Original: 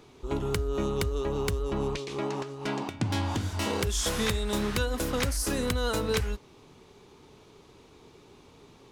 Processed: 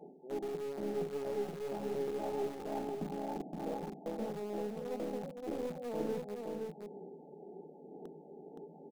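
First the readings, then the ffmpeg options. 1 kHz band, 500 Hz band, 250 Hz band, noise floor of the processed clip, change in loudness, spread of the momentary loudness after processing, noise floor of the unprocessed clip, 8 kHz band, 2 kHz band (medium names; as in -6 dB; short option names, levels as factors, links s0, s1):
-8.0 dB, -5.5 dB, -8.0 dB, -55 dBFS, -9.5 dB, 14 LU, -56 dBFS, -24.0 dB, -19.0 dB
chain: -filter_complex "[0:a]bandreject=f=50:t=h:w=6,bandreject=f=100:t=h:w=6,bandreject=f=150:t=h:w=6,bandreject=f=200:t=h:w=6,bandreject=f=250:t=h:w=6,bandreject=f=300:t=h:w=6,bandreject=f=350:t=h:w=6,aphaser=in_gain=1:out_gain=1:delay=2.8:decay=0.43:speed=1:type=sinusoidal,adynamicequalizer=threshold=0.00631:dfrequency=310:dqfactor=2.4:tfrequency=310:tqfactor=2.4:attack=5:release=100:ratio=0.375:range=2.5:mode=cutabove:tftype=bell,areverse,acompressor=threshold=0.0141:ratio=6,areverse,afftfilt=real='re*between(b*sr/4096,150,890)':imag='im*between(b*sr/4096,150,890)':win_size=4096:overlap=0.75,asplit=2[s0][s1];[s1]acrusher=bits=4:dc=4:mix=0:aa=0.000001,volume=0.355[s2];[s0][s2]amix=inputs=2:normalize=0,aecho=1:1:519:0.631,volume=1.26"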